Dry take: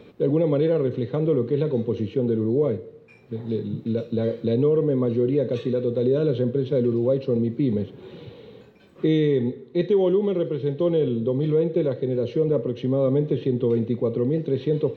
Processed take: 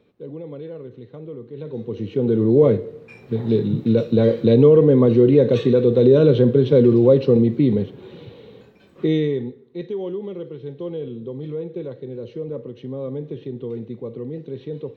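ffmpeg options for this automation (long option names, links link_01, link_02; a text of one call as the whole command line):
ffmpeg -i in.wav -af "volume=8dB,afade=type=in:start_time=1.53:duration=0.45:silence=0.281838,afade=type=in:start_time=1.98:duration=0.67:silence=0.298538,afade=type=out:start_time=7.25:duration=0.84:silence=0.446684,afade=type=out:start_time=9.15:duration=0.4:silence=0.354813" out.wav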